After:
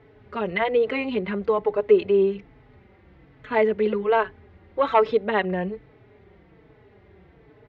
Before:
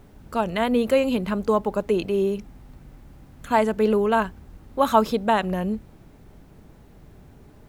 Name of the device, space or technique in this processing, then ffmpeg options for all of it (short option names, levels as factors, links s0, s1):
barber-pole flanger into a guitar amplifier: -filter_complex "[0:a]asplit=2[s0][s1];[s1]adelay=4.1,afreqshift=-1.2[s2];[s0][s2]amix=inputs=2:normalize=1,asoftclip=type=tanh:threshold=0.355,highpass=77,equalizer=f=150:t=q:w=4:g=-5,equalizer=f=240:t=q:w=4:g=-7,equalizer=f=420:t=q:w=4:g=8,equalizer=f=2000:t=q:w=4:g=9,lowpass=f=3700:w=0.5412,lowpass=f=3700:w=1.3066,volume=1.12"